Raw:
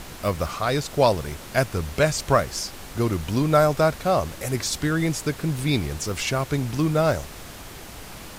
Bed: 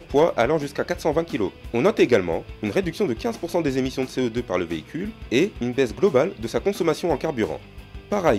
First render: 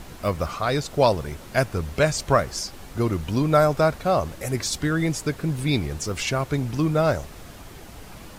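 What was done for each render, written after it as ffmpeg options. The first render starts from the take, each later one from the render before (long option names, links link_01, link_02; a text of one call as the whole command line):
ffmpeg -i in.wav -af "afftdn=noise_reduction=6:noise_floor=-40" out.wav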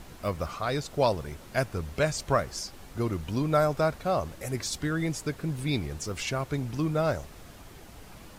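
ffmpeg -i in.wav -af "volume=-6dB" out.wav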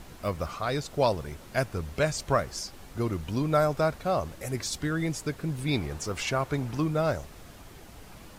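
ffmpeg -i in.wav -filter_complex "[0:a]asettb=1/sr,asplit=3[link_01][link_02][link_03];[link_01]atrim=end=5.684[link_04];[link_02]atrim=start=5.68:end=6.84,asetpts=PTS-STARTPTS,afade=type=in:duration=0.004:curve=qsin,afade=type=out:start_time=1.156:duration=0.004:curve=qsin,equalizer=frequency=970:width=0.6:gain=5[link_05];[link_03]atrim=start=6.836[link_06];[link_04][link_05]acrossfade=duration=0.004:curve1=hsin:curve2=qsin[link_07];[link_07][link_06]acrossfade=duration=0.004:curve1=qsin:curve2=hsin" out.wav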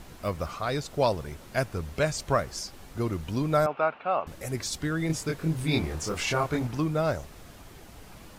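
ffmpeg -i in.wav -filter_complex "[0:a]asettb=1/sr,asplit=3[link_01][link_02][link_03];[link_01]atrim=end=3.664[link_04];[link_02]atrim=start=3.66:end=4.27,asetpts=PTS-STARTPTS,afade=type=in:duration=0.004:curve=qsin,afade=type=out:start_time=0.606:duration=0.004:curve=qsin,highpass=350,equalizer=frequency=360:width_type=q:width=4:gain=-4,equalizer=frequency=520:width_type=q:width=4:gain=-3,equalizer=frequency=850:width_type=q:width=4:gain=5,equalizer=frequency=1300:width_type=q:width=4:gain=5,equalizer=frequency=1900:width_type=q:width=4:gain=-4,equalizer=frequency=2700:width_type=q:width=4:gain=9,lowpass=frequency=2800:width=0.5412,lowpass=frequency=2800:width=1.3066[link_05];[link_03]atrim=start=4.266[link_06];[link_04][link_05]acrossfade=duration=0.004:curve1=hsin:curve2=qsin[link_07];[link_07][link_06]acrossfade=duration=0.004:curve1=qsin:curve2=hsin,asettb=1/sr,asplit=3[link_08][link_09][link_10];[link_08]atrim=end=5.074[link_11];[link_09]atrim=start=5.07:end=6.67,asetpts=PTS-STARTPTS,afade=type=in:duration=0.004:curve=qsin,afade=type=out:start_time=1.596:duration=0.004:curve=qsin,asplit=2[link_12][link_13];[link_13]adelay=25,volume=-2dB[link_14];[link_12][link_14]amix=inputs=2:normalize=0,atrim=end_sample=70560[link_15];[link_10]atrim=start=6.666[link_16];[link_11][link_15]acrossfade=duration=0.004:curve1=hsin:curve2=qsin[link_17];[link_17][link_16]acrossfade=duration=0.004:curve1=qsin:curve2=hsin" out.wav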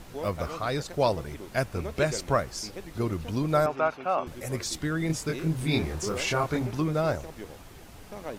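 ffmpeg -i in.wav -i bed.wav -filter_complex "[1:a]volume=-19dB[link_01];[0:a][link_01]amix=inputs=2:normalize=0" out.wav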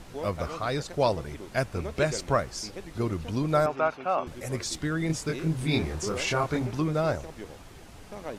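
ffmpeg -i in.wav -af "lowpass=11000" out.wav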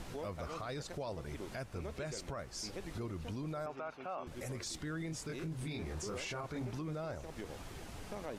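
ffmpeg -i in.wav -af "acompressor=threshold=-40dB:ratio=2.5,alimiter=level_in=9dB:limit=-24dB:level=0:latency=1:release=12,volume=-9dB" out.wav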